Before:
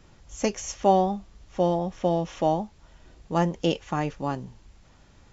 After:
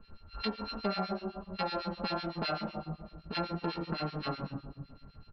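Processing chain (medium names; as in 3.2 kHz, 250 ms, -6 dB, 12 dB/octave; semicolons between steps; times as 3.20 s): sorted samples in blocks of 32 samples; hum notches 60/120/180 Hz; reverberation RT60 1.2 s, pre-delay 5 ms, DRR -1.5 dB; resampled via 11.025 kHz; harmonic tremolo 7.9 Hz, depth 100%, crossover 1.7 kHz; compression 4:1, threshold -30 dBFS, peak gain reduction 14 dB; trim -2 dB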